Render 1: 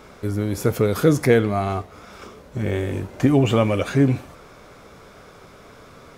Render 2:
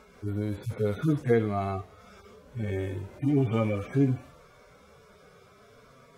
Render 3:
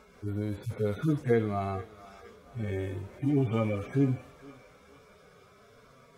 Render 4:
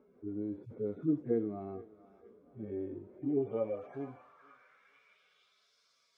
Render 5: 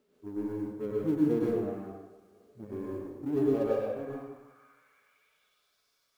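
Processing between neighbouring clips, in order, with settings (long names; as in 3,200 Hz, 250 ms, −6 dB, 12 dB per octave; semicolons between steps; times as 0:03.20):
harmonic-percussive split with one part muted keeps harmonic; level −6.5 dB
feedback echo with a high-pass in the loop 461 ms, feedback 62%, high-pass 660 Hz, level −16 dB; level −2 dB
band-pass filter sweep 310 Hz → 4,800 Hz, 0:03.07–0:05.76
mu-law and A-law mismatch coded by A; dense smooth reverb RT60 0.95 s, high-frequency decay 0.75×, pre-delay 90 ms, DRR −4 dB; level +1.5 dB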